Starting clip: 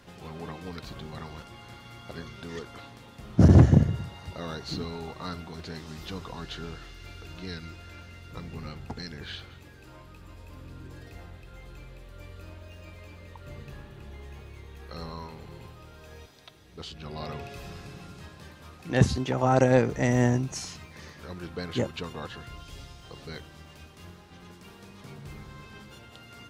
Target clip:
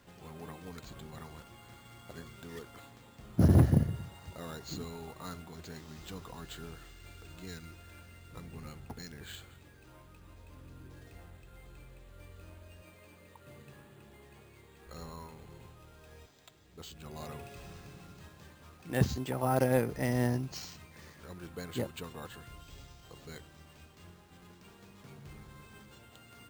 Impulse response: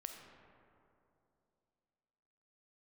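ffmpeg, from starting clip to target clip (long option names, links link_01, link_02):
-filter_complex "[0:a]asettb=1/sr,asplit=3[link_01][link_02][link_03];[link_01]atrim=end=12.824[link_04];[link_02]atrim=start=12.82:end=14.87,asetpts=PTS-STARTPTS,afade=type=in:duration=0.004:curve=qsin,afade=type=out:start_time=2.046:duration=0.004:curve=qsin,highpass=130[link_05];[link_03]atrim=start=14.866[link_06];[link_04][link_05]acrossfade=duration=0.004:curve1=hsin:curve2=qsin[link_07];[link_07][link_06]acrossfade=duration=0.004:curve1=qsin:curve2=hsin,acrusher=samples=4:mix=1:aa=0.000001,volume=-7dB"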